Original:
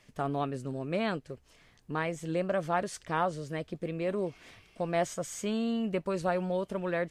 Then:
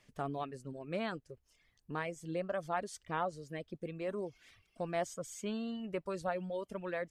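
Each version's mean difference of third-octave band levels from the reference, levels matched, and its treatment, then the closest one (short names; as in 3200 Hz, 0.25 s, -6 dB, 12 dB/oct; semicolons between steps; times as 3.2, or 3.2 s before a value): 3.5 dB: reverb removal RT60 1.2 s; gain -5.5 dB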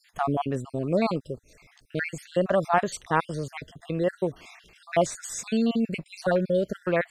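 6.5 dB: random spectral dropouts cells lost 48%; gain +8 dB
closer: first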